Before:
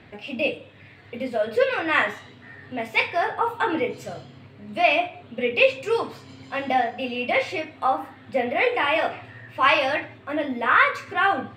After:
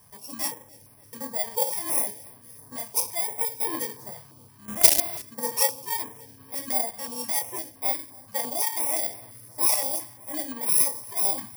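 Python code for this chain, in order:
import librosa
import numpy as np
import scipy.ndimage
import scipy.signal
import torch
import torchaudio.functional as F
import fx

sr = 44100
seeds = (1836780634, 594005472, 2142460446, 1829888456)

p1 = fx.bit_reversed(x, sr, seeds[0], block=32)
p2 = fx.peak_eq(p1, sr, hz=1000.0, db=9.5, octaves=0.45)
p3 = p2 + fx.echo_feedback(p2, sr, ms=290, feedback_pct=50, wet_db=-23.5, dry=0)
p4 = fx.quant_companded(p3, sr, bits=2, at=(4.68, 5.22))
p5 = fx.high_shelf(p4, sr, hz=5400.0, db=5.0)
p6 = fx.filter_held_notch(p5, sr, hz=5.8, low_hz=310.0, high_hz=6900.0)
y = p6 * librosa.db_to_amplitude(-8.0)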